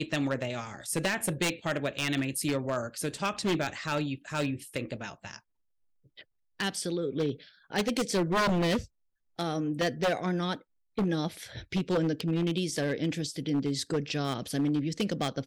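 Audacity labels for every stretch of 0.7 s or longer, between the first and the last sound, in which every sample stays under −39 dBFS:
5.360000	6.190000	silence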